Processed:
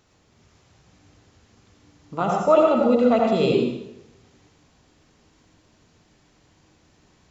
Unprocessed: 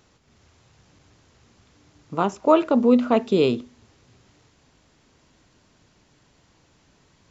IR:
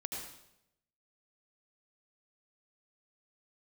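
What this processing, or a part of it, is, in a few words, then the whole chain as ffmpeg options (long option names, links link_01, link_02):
bathroom: -filter_complex "[1:a]atrim=start_sample=2205[link_01];[0:a][link_01]afir=irnorm=-1:irlink=0,asettb=1/sr,asplit=3[link_02][link_03][link_04];[link_02]atrim=end=2.214[link_05];[link_03]atrim=start=2.21:end=3.54,asetpts=PTS-STARTPTS,afade=type=in:duration=0.004:curve=qsin,afade=type=out:start_time=1.326:duration=0.004:curve=qsin,aecho=1:1:1.5:0.55,atrim=end_sample=58653[link_06];[link_04]atrim=start=3.536[link_07];[link_05][link_06]acrossfade=duration=0.004:curve1=hsin:curve2=qsin[link_08];[link_08][link_07]acrossfade=duration=0.004:curve1=qsin:curve2=hsin"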